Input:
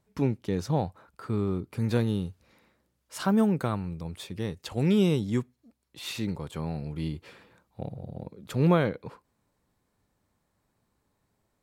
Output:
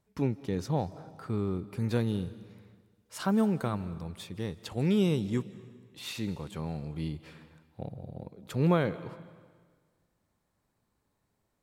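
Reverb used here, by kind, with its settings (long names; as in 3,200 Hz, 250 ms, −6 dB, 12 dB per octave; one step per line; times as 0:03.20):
comb and all-pass reverb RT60 1.6 s, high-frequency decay 0.95×, pre-delay 120 ms, DRR 16.5 dB
level −3 dB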